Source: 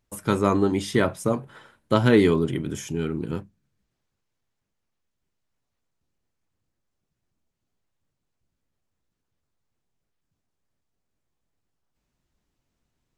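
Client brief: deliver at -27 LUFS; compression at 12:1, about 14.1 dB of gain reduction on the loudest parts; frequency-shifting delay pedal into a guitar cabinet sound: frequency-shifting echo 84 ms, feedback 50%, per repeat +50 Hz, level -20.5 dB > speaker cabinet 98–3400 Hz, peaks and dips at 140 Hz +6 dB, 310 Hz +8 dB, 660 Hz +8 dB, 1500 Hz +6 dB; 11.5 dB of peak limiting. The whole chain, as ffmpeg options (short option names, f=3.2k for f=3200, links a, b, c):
-filter_complex "[0:a]acompressor=threshold=-27dB:ratio=12,alimiter=level_in=3dB:limit=-24dB:level=0:latency=1,volume=-3dB,asplit=5[a][b][c][d][e];[b]adelay=84,afreqshift=50,volume=-20.5dB[f];[c]adelay=168,afreqshift=100,volume=-26.5dB[g];[d]adelay=252,afreqshift=150,volume=-32.5dB[h];[e]adelay=336,afreqshift=200,volume=-38.6dB[i];[a][f][g][h][i]amix=inputs=5:normalize=0,highpass=98,equalizer=f=140:t=q:w=4:g=6,equalizer=f=310:t=q:w=4:g=8,equalizer=f=660:t=q:w=4:g=8,equalizer=f=1.5k:t=q:w=4:g=6,lowpass=f=3.4k:w=0.5412,lowpass=f=3.4k:w=1.3066,volume=7.5dB"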